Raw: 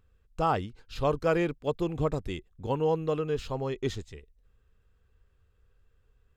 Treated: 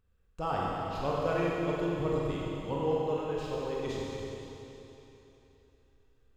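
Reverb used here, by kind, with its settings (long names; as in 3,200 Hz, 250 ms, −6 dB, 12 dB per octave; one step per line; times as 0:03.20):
four-comb reverb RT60 3.3 s, combs from 32 ms, DRR −5 dB
level −8 dB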